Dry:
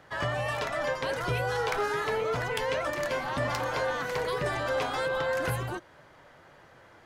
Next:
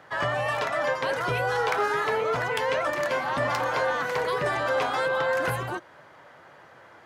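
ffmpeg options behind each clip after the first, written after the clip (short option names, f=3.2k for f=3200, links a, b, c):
-af "highpass=95,equalizer=f=1.1k:w=0.48:g=5.5"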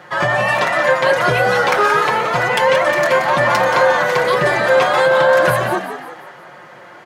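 -filter_complex "[0:a]aecho=1:1:5.6:0.77,asplit=2[a][b];[b]asplit=5[c][d][e][f][g];[c]adelay=177,afreqshift=68,volume=-9dB[h];[d]adelay=354,afreqshift=136,volume=-15.6dB[i];[e]adelay=531,afreqshift=204,volume=-22.1dB[j];[f]adelay=708,afreqshift=272,volume=-28.7dB[k];[g]adelay=885,afreqshift=340,volume=-35.2dB[l];[h][i][j][k][l]amix=inputs=5:normalize=0[m];[a][m]amix=inputs=2:normalize=0,volume=9dB"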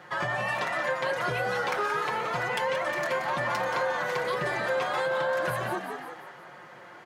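-af "equalizer=f=600:t=o:w=0.22:g=-3.5,acompressor=threshold=-22dB:ratio=2,volume=-8dB"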